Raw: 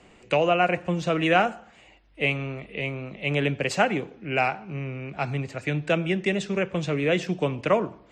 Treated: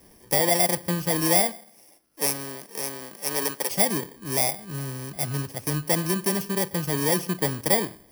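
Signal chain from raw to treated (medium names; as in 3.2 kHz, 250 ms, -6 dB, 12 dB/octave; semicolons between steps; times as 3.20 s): bit-reversed sample order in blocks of 32 samples; 1.39–3.70 s: high-pass 170 Hz -> 420 Hz 12 dB/octave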